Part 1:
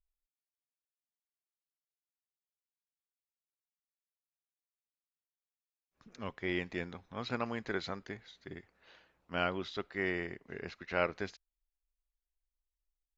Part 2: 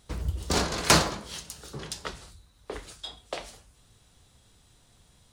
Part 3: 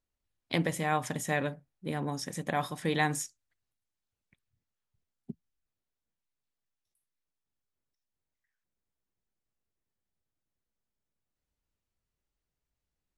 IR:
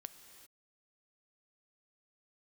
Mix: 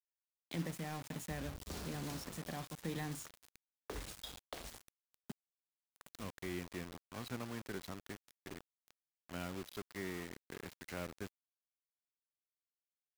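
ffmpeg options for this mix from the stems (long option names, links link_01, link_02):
-filter_complex "[0:a]acompressor=mode=upward:threshold=-49dB:ratio=2.5,volume=-3dB[link_01];[1:a]acompressor=threshold=-35dB:ratio=3,adelay=1200,volume=-0.5dB[link_02];[2:a]highpass=frequency=120:poles=1,asoftclip=type=tanh:threshold=-14.5dB,volume=-6dB,asplit=2[link_03][link_04];[link_04]apad=whole_len=287634[link_05];[link_02][link_05]sidechaincompress=threshold=-49dB:ratio=3:attack=22:release=656[link_06];[link_01][link_06][link_03]amix=inputs=3:normalize=0,acrossover=split=300[link_07][link_08];[link_08]acompressor=threshold=-50dB:ratio=2.5[link_09];[link_07][link_09]amix=inputs=2:normalize=0,acrusher=bits=7:mix=0:aa=0.000001"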